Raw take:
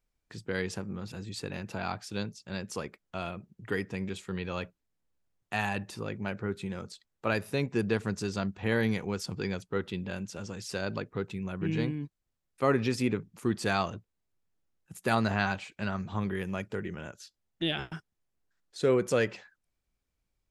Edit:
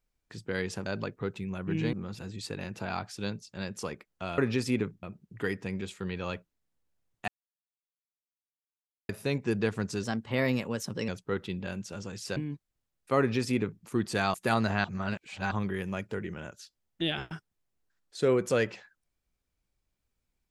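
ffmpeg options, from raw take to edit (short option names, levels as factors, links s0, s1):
-filter_complex "[0:a]asplit=13[s0][s1][s2][s3][s4][s5][s6][s7][s8][s9][s10][s11][s12];[s0]atrim=end=0.862[s13];[s1]atrim=start=10.798:end=11.872[s14];[s2]atrim=start=0.858:end=3.312[s15];[s3]atrim=start=12.698:end=13.352[s16];[s4]atrim=start=3.308:end=5.56,asetpts=PTS-STARTPTS,afade=t=out:st=2.248:d=0.004:c=hsin[s17];[s5]atrim=start=5.56:end=7.37,asetpts=PTS-STARTPTS,volume=0[s18];[s6]atrim=start=7.37:end=8.314,asetpts=PTS-STARTPTS,afade=t=in:d=0.004:c=hsin[s19];[s7]atrim=start=8.31:end=9.52,asetpts=PTS-STARTPTS,asetrate=50715,aresample=44100[s20];[s8]atrim=start=9.516:end=10.802[s21];[s9]atrim=start=11.868:end=13.852[s22];[s10]atrim=start=14.948:end=15.452[s23];[s11]atrim=start=15.448:end=16.122,asetpts=PTS-STARTPTS,areverse[s24];[s12]atrim=start=16.118[s25];[s13][s14]acrossfade=d=0.004:c1=hsin:c2=hsin[s26];[s26][s15]acrossfade=d=0.004:c1=hsin:c2=hsin[s27];[s27][s16]acrossfade=d=0.004:c1=hsin:c2=hsin[s28];[s17][s18][s19]concat=n=3:v=0:a=1[s29];[s28][s29]acrossfade=d=0.004:c1=hsin:c2=hsin[s30];[s30][s20]acrossfade=d=0.004:c1=hsin:c2=hsin[s31];[s31][s21]acrossfade=d=0.004:c1=hsin:c2=hsin[s32];[s32][s22]acrossfade=d=0.004:c1=hsin:c2=hsin[s33];[s33][s23]acrossfade=d=0.004:c1=hsin:c2=hsin[s34];[s34][s24]acrossfade=d=0.004:c1=hsin:c2=hsin[s35];[s35][s25]acrossfade=d=0.004:c1=hsin:c2=hsin"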